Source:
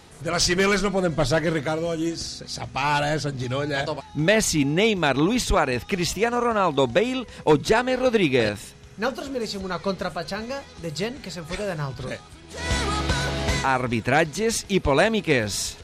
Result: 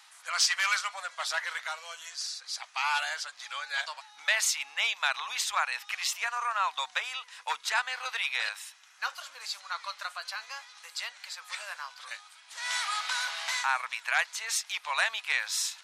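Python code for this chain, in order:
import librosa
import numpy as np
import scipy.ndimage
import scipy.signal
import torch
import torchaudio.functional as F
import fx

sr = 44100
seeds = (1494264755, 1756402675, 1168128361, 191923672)

y = scipy.signal.sosfilt(scipy.signal.cheby2(4, 50, 380.0, 'highpass', fs=sr, output='sos'), x)
y = F.gain(torch.from_numpy(y), -3.0).numpy()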